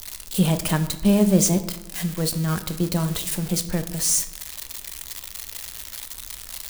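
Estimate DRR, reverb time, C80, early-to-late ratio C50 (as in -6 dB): 8.5 dB, 0.95 s, 15.0 dB, 12.5 dB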